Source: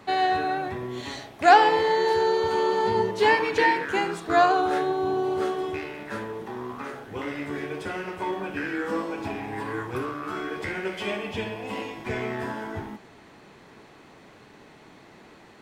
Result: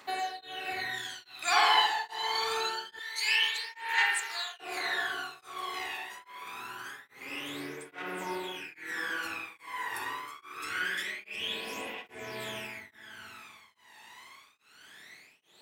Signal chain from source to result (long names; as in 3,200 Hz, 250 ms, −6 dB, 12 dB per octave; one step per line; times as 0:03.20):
first difference
on a send: feedback delay with all-pass diffusion 464 ms, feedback 44%, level −11 dB
on the sum: spring reverb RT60 1.8 s, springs 49/60 ms, chirp 35 ms, DRR −6.5 dB
phase shifter 0.25 Hz, delay 1.1 ms, feedback 73%
0:02.99–0:04.60: high-pass filter 1,400 Hz 12 dB per octave
tremolo along a rectified sine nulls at 1.2 Hz
level +3.5 dB